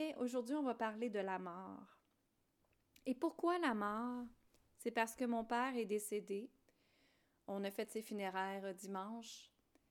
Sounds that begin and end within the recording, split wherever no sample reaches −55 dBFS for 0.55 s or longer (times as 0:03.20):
0:02.96–0:06.69